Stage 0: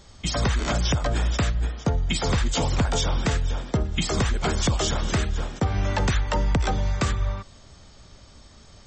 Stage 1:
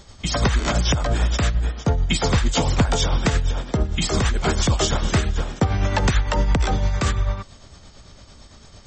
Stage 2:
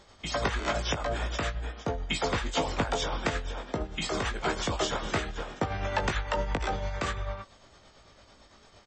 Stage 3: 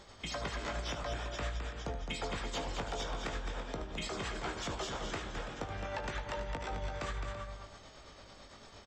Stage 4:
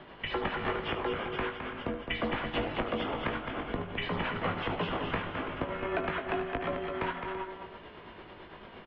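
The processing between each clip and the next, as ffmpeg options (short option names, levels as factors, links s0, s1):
-af "tremolo=f=8.9:d=0.44,volume=1.88"
-filter_complex "[0:a]bass=f=250:g=-11,treble=f=4000:g=-8,asplit=2[s0][s1];[s1]adelay=19,volume=0.447[s2];[s0][s2]amix=inputs=2:normalize=0,volume=0.531"
-filter_complex "[0:a]acompressor=threshold=0.01:ratio=3,asoftclip=type=tanh:threshold=0.0355,asplit=2[s0][s1];[s1]aecho=0:1:75|213|333:0.282|0.473|0.251[s2];[s0][s2]amix=inputs=2:normalize=0,volume=1.12"
-af "highpass=f=230:t=q:w=0.5412,highpass=f=230:t=q:w=1.307,lowpass=f=3200:t=q:w=0.5176,lowpass=f=3200:t=q:w=0.7071,lowpass=f=3200:t=q:w=1.932,afreqshift=-210,volume=2.51"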